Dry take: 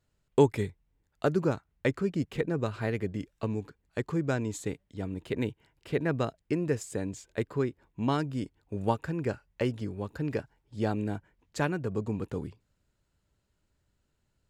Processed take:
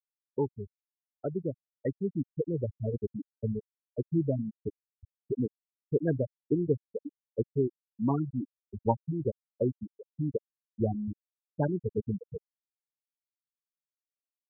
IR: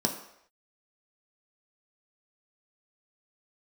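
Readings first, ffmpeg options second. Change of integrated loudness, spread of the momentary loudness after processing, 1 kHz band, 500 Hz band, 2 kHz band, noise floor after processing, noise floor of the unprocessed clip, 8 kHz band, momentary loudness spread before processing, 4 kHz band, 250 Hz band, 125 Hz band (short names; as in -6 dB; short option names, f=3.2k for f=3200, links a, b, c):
-1.5 dB, 12 LU, -4.5 dB, -2.0 dB, -15.0 dB, under -85 dBFS, -77 dBFS, under -30 dB, 8 LU, under -35 dB, -1.0 dB, -1.0 dB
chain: -af "afftfilt=real='re*gte(hypot(re,im),0.178)':imag='im*gte(hypot(re,im),0.178)':win_size=1024:overlap=0.75,dynaudnorm=f=360:g=11:m=11.5dB,volume=-8.5dB"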